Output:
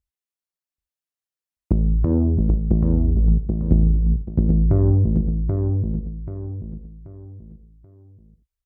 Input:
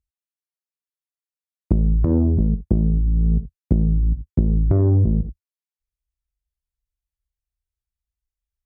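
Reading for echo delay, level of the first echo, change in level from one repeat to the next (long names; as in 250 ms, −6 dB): 783 ms, −4.5 dB, −9.0 dB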